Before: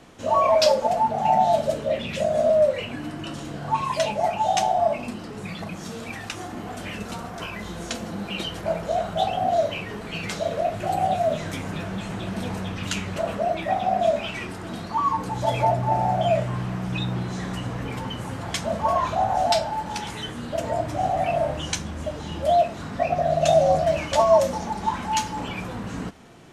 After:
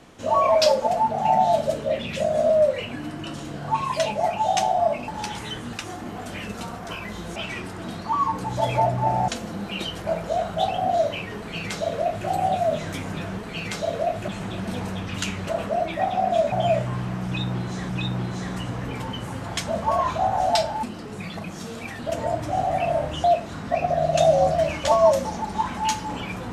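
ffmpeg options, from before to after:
-filter_complex "[0:a]asplit=12[s0][s1][s2][s3][s4][s5][s6][s7][s8][s9][s10][s11];[s0]atrim=end=5.082[s12];[s1]atrim=start=19.798:end=20.452[s13];[s2]atrim=start=6.238:end=7.872[s14];[s3]atrim=start=14.208:end=16.132[s15];[s4]atrim=start=7.868:end=11.972[s16];[s5]atrim=start=9.958:end=10.862[s17];[s6]atrim=start=11.968:end=14.212[s18];[s7]atrim=start=16.128:end=17.502[s19];[s8]atrim=start=16.858:end=19.802[s20];[s9]atrim=start=5.078:end=6.242[s21];[s10]atrim=start=20.448:end=21.702[s22];[s11]atrim=start=22.518[s23];[s12][s13]acrossfade=d=0.004:c1=hsin:c2=hsin[s24];[s24][s14]acrossfade=d=0.004:c1=hsin:c2=hsin[s25];[s25][s15]acrossfade=d=0.004:c1=hsin:c2=hsin[s26];[s26][s16]acrossfade=d=0.004:c1=hsin:c2=hsin[s27];[s27][s17]acrossfade=d=0.004:c1=hsin:c2=hsin[s28];[s28][s18]acrossfade=d=0.004:c1=hsin:c2=hsin[s29];[s29][s19]acrossfade=d=0.004:c1=hsin:c2=hsin[s30];[s30][s20]acrossfade=d=0.004:c1=hsin:c2=hsin[s31];[s31][s21]acrossfade=d=0.004:c1=hsin:c2=hsin[s32];[s32][s22]acrossfade=d=0.004:c1=hsin:c2=hsin[s33];[s33][s23]acrossfade=d=0.004:c1=hsin:c2=hsin"

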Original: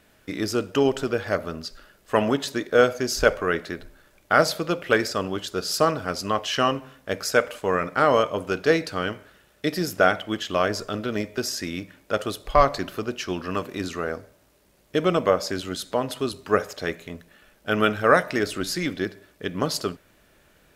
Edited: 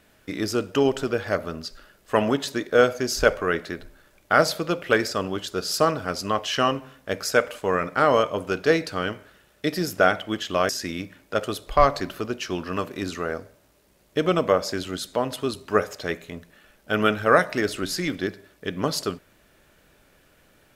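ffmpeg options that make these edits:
-filter_complex "[0:a]asplit=2[s0][s1];[s0]atrim=end=10.692[s2];[s1]atrim=start=11.468[s3];[s2][s3]acrossfade=d=0.004:c1=hsin:c2=hsin"

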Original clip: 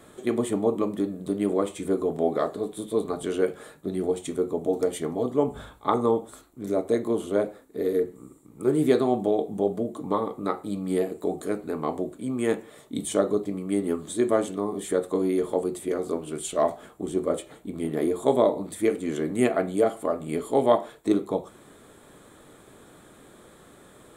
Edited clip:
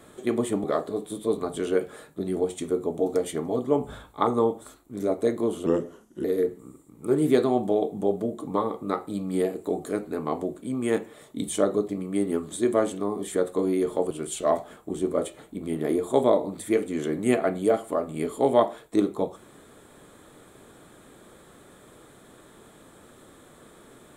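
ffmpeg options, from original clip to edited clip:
-filter_complex "[0:a]asplit=5[s0][s1][s2][s3][s4];[s0]atrim=end=0.642[s5];[s1]atrim=start=2.308:end=7.334[s6];[s2]atrim=start=7.33:end=7.81,asetpts=PTS-STARTPTS,asetrate=36162,aresample=44100[s7];[s3]atrim=start=7.806:end=15.672[s8];[s4]atrim=start=16.228[s9];[s5][s6]acrossfade=d=0.004:c1=hsin:c2=hsin[s10];[s10][s7]acrossfade=d=0.004:c1=hsin:c2=hsin[s11];[s11][s8]acrossfade=d=0.004:c1=hsin:c2=hsin[s12];[s12][s9]acrossfade=d=0.004:c1=hsin:c2=hsin"

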